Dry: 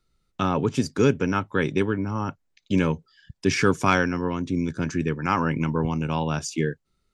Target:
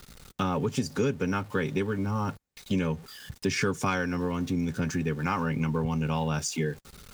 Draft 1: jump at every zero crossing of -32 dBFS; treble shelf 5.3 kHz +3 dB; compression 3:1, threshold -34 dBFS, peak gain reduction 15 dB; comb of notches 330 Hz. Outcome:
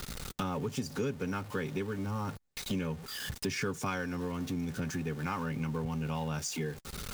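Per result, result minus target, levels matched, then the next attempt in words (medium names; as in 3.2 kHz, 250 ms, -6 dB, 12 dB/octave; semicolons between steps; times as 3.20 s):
compression: peak gain reduction +7 dB; jump at every zero crossing: distortion +8 dB
jump at every zero crossing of -32 dBFS; treble shelf 5.3 kHz +3 dB; compression 3:1, threshold -23.5 dBFS, peak gain reduction 8 dB; comb of notches 330 Hz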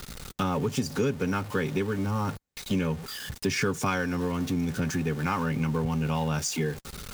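jump at every zero crossing: distortion +8 dB
jump at every zero crossing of -41 dBFS; treble shelf 5.3 kHz +3 dB; compression 3:1, threshold -23.5 dBFS, peak gain reduction 8 dB; comb of notches 330 Hz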